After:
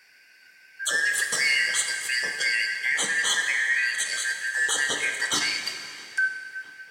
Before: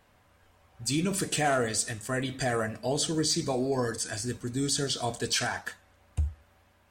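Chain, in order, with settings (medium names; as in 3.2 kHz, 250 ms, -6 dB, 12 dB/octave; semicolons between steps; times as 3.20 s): four frequency bands reordered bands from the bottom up 3142; high-pass 370 Hz 6 dB/octave; in parallel at +2 dB: compression, threshold -36 dBFS, peak gain reduction 13 dB; on the sum: filtered feedback delay 659 ms, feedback 60%, low-pass 3.2 kHz, level -22 dB; plate-style reverb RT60 2.6 s, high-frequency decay 0.9×, DRR 5 dB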